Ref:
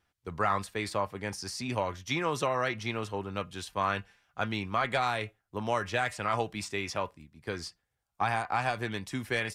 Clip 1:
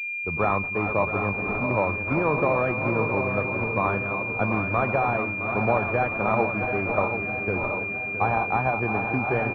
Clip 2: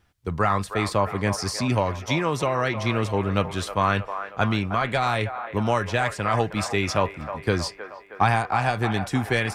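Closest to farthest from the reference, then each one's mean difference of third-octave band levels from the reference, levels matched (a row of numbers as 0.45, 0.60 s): 2, 1; 4.0, 11.5 dB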